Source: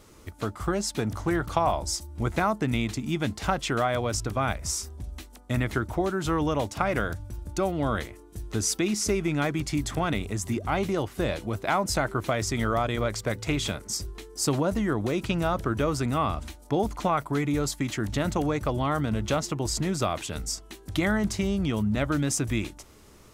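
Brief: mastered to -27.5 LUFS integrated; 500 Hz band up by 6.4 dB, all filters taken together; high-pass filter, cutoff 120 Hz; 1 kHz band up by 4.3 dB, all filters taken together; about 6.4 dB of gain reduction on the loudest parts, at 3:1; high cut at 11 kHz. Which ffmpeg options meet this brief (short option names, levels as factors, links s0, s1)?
-af "highpass=120,lowpass=11000,equalizer=f=500:t=o:g=7.5,equalizer=f=1000:t=o:g=3,acompressor=threshold=0.0631:ratio=3,volume=1.19"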